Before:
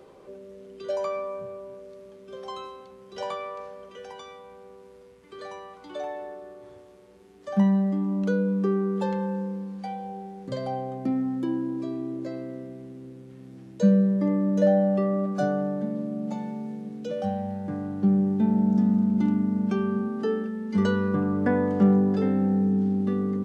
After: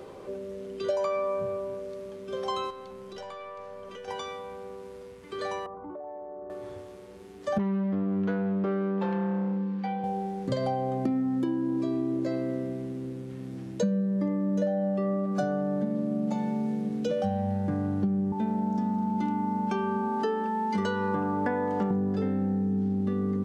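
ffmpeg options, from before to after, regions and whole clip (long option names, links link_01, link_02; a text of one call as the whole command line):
ffmpeg -i in.wav -filter_complex "[0:a]asettb=1/sr,asplit=3[link_01][link_02][link_03];[link_01]atrim=end=2.704[link_04];[link_02]atrim=start=2.7:end=4.08,asetpts=PTS-STARTPTS,afade=type=in:duration=0.004:curve=qsin,afade=type=out:start_time=1.376:duration=0.004:curve=qsin,acompressor=threshold=-44dB:ratio=5:attack=3.2:release=140:knee=1:detection=peak,aeval=exprs='(tanh(79.4*val(0)+0.3)-tanh(0.3))/79.4':channel_layout=same[link_05];[link_03]atrim=start=4.076[link_06];[link_04][link_05]acrossfade=duration=0.004:curve1=hsin:curve2=qsin[link_07];[link_07][link_06]acrossfade=duration=0.004:curve1=qsin:curve2=hsin,asettb=1/sr,asplit=3[link_08][link_09][link_10];[link_08]atrim=end=5.664[link_11];[link_09]atrim=start=5.66:end=6.5,asetpts=PTS-STARTPTS,afade=type=in:duration=0.004:curve=qsin,afade=type=out:start_time=0.836:duration=0.004:curve=qsin,lowpass=frequency=1100:width=0.5412,lowpass=frequency=1100:width=1.3066,acompressor=threshold=-43dB:ratio=12:attack=3.2:release=140:knee=1:detection=peak[link_12];[link_10]atrim=start=6.496[link_13];[link_11][link_12]acrossfade=duration=0.004:curve1=hsin:curve2=qsin[link_14];[link_14][link_13]acrossfade=duration=0.004:curve1=qsin:curve2=hsin,asettb=1/sr,asplit=3[link_15][link_16][link_17];[link_15]atrim=end=7.584[link_18];[link_16]atrim=start=7.58:end=10.04,asetpts=PTS-STARTPTS,afade=type=in:duration=0.004:curve=qsin,afade=type=out:start_time=2.456:duration=0.004:curve=qsin,equalizer=frequency=640:width_type=o:width=0.39:gain=-14.5,aeval=exprs='clip(val(0),-1,0.0335)':channel_layout=same,highpass=150,lowpass=2800[link_19];[link_17]atrim=start=10.036[link_20];[link_18][link_19]acrossfade=duration=0.004:curve1=hsin:curve2=qsin[link_21];[link_21][link_20]acrossfade=duration=0.004:curve1=qsin:curve2=hsin,asettb=1/sr,asplit=3[link_22][link_23][link_24];[link_22]atrim=end=18.324[link_25];[link_23]atrim=start=18.32:end=21.91,asetpts=PTS-STARTPTS,afade=type=in:duration=0.004:curve=qsin,afade=type=out:start_time=3.586:duration=0.004:curve=qsin,highpass=frequency=430:poles=1,aeval=exprs='val(0)+0.0224*sin(2*PI*880*n/s)':channel_layout=same[link_26];[link_24]atrim=start=21.906[link_27];[link_25][link_26]acrossfade=duration=0.004:curve1=hsin:curve2=qsin[link_28];[link_28][link_27]acrossfade=duration=0.004:curve1=qsin:curve2=hsin,equalizer=frequency=95:width=5.9:gain=6.5,acompressor=threshold=-31dB:ratio=10,volume=6.5dB" out.wav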